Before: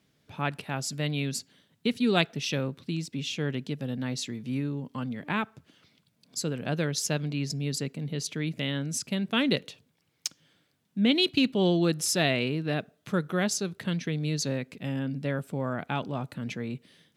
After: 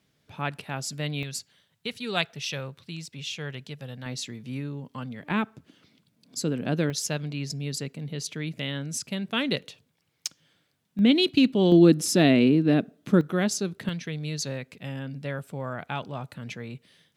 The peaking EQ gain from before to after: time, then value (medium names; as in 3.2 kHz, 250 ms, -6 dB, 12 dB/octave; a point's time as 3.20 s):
peaking EQ 270 Hz 1.3 oct
-2.5 dB
from 1.23 s -13 dB
from 4.06 s -4.5 dB
from 5.31 s +6.5 dB
from 6.90 s -3 dB
from 10.99 s +5 dB
from 11.72 s +14 dB
from 13.21 s +4.5 dB
from 13.89 s -6.5 dB